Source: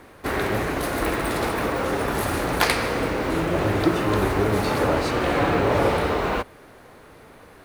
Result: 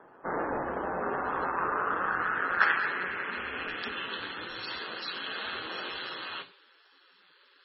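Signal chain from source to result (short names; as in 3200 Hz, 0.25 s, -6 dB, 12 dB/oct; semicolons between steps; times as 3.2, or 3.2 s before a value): 0.58–1.96 de-hum 191.3 Hz, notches 16; band-pass sweep 760 Hz -> 3600 Hz, 0.9–4.47; ring modulator 88 Hz; reverb RT60 0.55 s, pre-delay 25 ms, DRR 10 dB; MP3 16 kbps 22050 Hz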